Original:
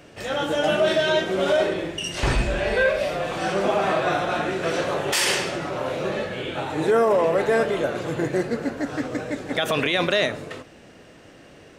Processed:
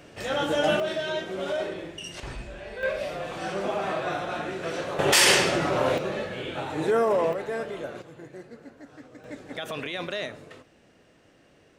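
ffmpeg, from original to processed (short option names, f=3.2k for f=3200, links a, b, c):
-af "asetnsamples=n=441:p=0,asendcmd='0.8 volume volume -9dB;2.2 volume volume -16dB;2.83 volume volume -7dB;4.99 volume volume 3.5dB;5.98 volume volume -4dB;7.33 volume volume -11dB;8.02 volume volume -19.5dB;9.24 volume volume -11dB',volume=-1.5dB"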